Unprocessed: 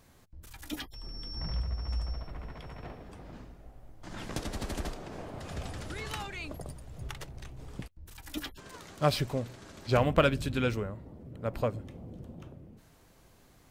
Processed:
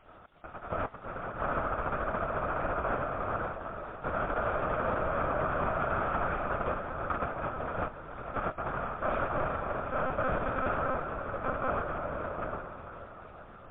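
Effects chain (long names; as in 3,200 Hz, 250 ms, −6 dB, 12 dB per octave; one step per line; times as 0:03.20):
compressor on every frequency bin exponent 0.2
noise gate −21 dBFS, range −31 dB
Chebyshev low-pass filter 1,400 Hz, order 3
spectral tilt +4.5 dB per octave
reversed playback
downward compressor 10 to 1, threshold −26 dBFS, peak gain reduction 9.5 dB
reversed playback
surface crackle 480 per second −48 dBFS
on a send: feedback delay with all-pass diffusion 459 ms, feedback 55%, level −11 dB
on the sum: one-pitch LPC vocoder at 8 kHz 260 Hz
MP3 32 kbit/s 8,000 Hz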